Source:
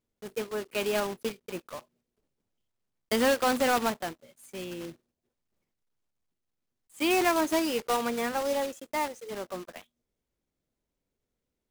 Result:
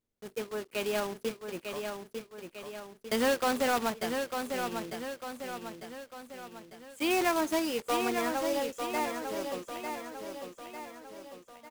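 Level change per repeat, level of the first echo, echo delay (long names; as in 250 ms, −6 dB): −6.0 dB, −6.0 dB, 899 ms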